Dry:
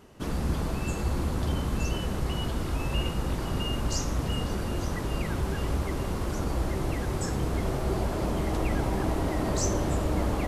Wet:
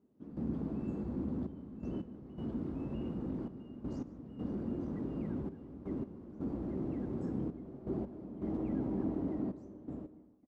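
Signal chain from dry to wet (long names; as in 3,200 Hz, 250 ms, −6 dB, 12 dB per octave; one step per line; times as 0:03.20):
fade-out on the ending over 1.41 s
gate pattern "..xxxxxx..x" 82 BPM −12 dB
in parallel at −6 dB: hard clipping −29 dBFS, distortion −9 dB
on the sum: resonant band-pass 250 Hz, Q 2.3
on a send: single-tap delay 149 ms −20.5 dB
on the sum: level −2 dB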